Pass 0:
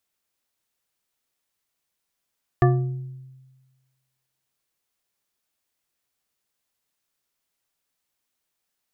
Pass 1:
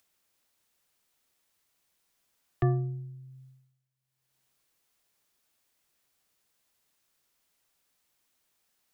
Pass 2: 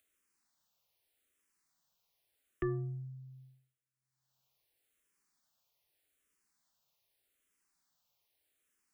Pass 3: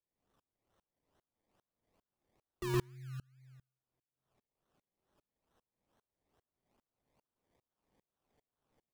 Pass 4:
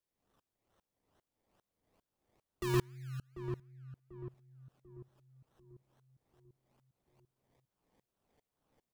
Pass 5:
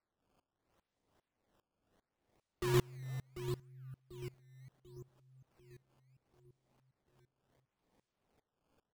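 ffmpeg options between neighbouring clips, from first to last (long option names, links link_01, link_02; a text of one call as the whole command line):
ffmpeg -i in.wav -filter_complex "[0:a]acrossover=split=130|380[link_01][link_02][link_03];[link_03]alimiter=limit=-20.5dB:level=0:latency=1:release=54[link_04];[link_01][link_02][link_04]amix=inputs=3:normalize=0,agate=range=-33dB:threshold=-51dB:ratio=3:detection=peak,acompressor=mode=upward:threshold=-36dB:ratio=2.5,volume=-6dB" out.wav
ffmpeg -i in.wav -filter_complex "[0:a]asplit=2[link_01][link_02];[link_02]afreqshift=-0.82[link_03];[link_01][link_03]amix=inputs=2:normalize=1,volume=-2.5dB" out.wav
ffmpeg -i in.wav -filter_complex "[0:a]acrusher=samples=26:mix=1:aa=0.000001:lfo=1:lforange=15.6:lforate=2.3,asplit=2[link_01][link_02];[link_02]adelay=116.6,volume=-6dB,highshelf=frequency=4000:gain=-2.62[link_03];[link_01][link_03]amix=inputs=2:normalize=0,aeval=exprs='val(0)*pow(10,-31*if(lt(mod(-2.5*n/s,1),2*abs(-2.5)/1000),1-mod(-2.5*n/s,1)/(2*abs(-2.5)/1000),(mod(-2.5*n/s,1)-2*abs(-2.5)/1000)/(1-2*abs(-2.5)/1000))/20)':channel_layout=same,volume=6dB" out.wav
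ffmpeg -i in.wav -filter_complex "[0:a]asplit=2[link_01][link_02];[link_02]adelay=742,lowpass=frequency=830:poles=1,volume=-8dB,asplit=2[link_03][link_04];[link_04]adelay=742,lowpass=frequency=830:poles=1,volume=0.49,asplit=2[link_05][link_06];[link_06]adelay=742,lowpass=frequency=830:poles=1,volume=0.49,asplit=2[link_07][link_08];[link_08]adelay=742,lowpass=frequency=830:poles=1,volume=0.49,asplit=2[link_09][link_10];[link_10]adelay=742,lowpass=frequency=830:poles=1,volume=0.49,asplit=2[link_11][link_12];[link_12]adelay=742,lowpass=frequency=830:poles=1,volume=0.49[link_13];[link_01][link_03][link_05][link_07][link_09][link_11][link_13]amix=inputs=7:normalize=0,volume=2dB" out.wav
ffmpeg -i in.wav -af "acrusher=samples=13:mix=1:aa=0.000001:lfo=1:lforange=20.8:lforate=0.72" out.wav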